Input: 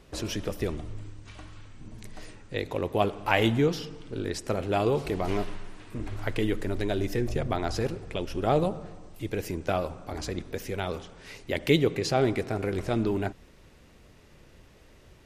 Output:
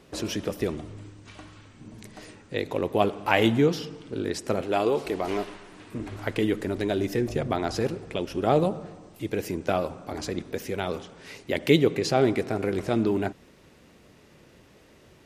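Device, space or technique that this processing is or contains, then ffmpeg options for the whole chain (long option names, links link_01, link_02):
filter by subtraction: -filter_complex "[0:a]asettb=1/sr,asplit=3[link_01][link_02][link_03];[link_01]atrim=end=4.614[link_04];[link_02]atrim=start=4.61:end=5.72,asetpts=PTS-STARTPTS,afade=type=in:duration=0.004:curve=qsin,afade=type=out:start_time=1.106:duration=0.004:curve=qsin,equalizer=frequency=130:width=1:gain=-10.5[link_05];[link_03]atrim=start=5.716[link_06];[link_04][link_05]acrossfade=duration=0.004:curve1=hsin:curve2=qsin[link_07];[link_07][link_06]acrossfade=duration=0.004:curve1=qsin:curve2=hsin,asplit=2[link_08][link_09];[link_09]lowpass=220,volume=-1[link_10];[link_08][link_10]amix=inputs=2:normalize=0,volume=1.5dB"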